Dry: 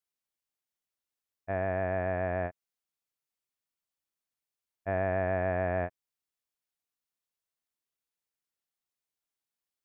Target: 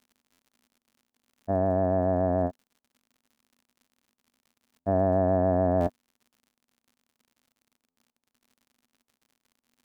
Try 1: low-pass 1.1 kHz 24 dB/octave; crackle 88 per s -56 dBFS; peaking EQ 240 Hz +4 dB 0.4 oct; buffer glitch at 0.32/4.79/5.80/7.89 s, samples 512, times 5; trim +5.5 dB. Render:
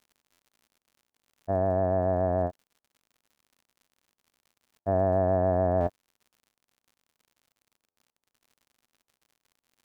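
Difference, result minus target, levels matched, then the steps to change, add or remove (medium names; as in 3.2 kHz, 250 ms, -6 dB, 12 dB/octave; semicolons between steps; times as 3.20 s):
250 Hz band -3.5 dB
change: peaking EQ 240 Hz +14.5 dB 0.4 oct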